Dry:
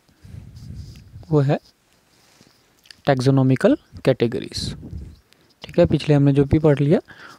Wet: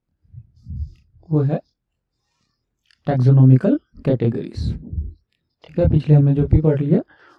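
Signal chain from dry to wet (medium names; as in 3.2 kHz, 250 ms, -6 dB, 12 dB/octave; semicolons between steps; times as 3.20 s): spectral noise reduction 19 dB; RIAA curve playback; chorus voices 2, 0.57 Hz, delay 25 ms, depth 1.6 ms; trim -3.5 dB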